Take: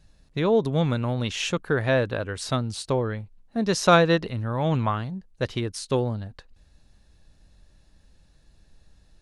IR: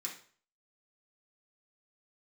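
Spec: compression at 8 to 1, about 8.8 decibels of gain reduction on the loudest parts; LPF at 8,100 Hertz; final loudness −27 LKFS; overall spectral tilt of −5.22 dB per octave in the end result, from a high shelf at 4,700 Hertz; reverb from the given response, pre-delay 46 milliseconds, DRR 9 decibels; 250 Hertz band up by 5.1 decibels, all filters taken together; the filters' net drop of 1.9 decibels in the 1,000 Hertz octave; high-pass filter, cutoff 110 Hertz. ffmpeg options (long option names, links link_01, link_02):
-filter_complex "[0:a]highpass=110,lowpass=8100,equalizer=frequency=250:width_type=o:gain=7.5,equalizer=frequency=1000:width_type=o:gain=-3.5,highshelf=frequency=4700:gain=5.5,acompressor=threshold=-21dB:ratio=8,asplit=2[link_01][link_02];[1:a]atrim=start_sample=2205,adelay=46[link_03];[link_02][link_03]afir=irnorm=-1:irlink=0,volume=-8.5dB[link_04];[link_01][link_04]amix=inputs=2:normalize=0,volume=0.5dB"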